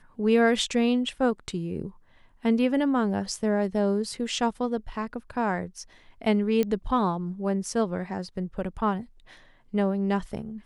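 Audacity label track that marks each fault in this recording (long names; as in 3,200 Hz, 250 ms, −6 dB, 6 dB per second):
6.630000	6.630000	click −14 dBFS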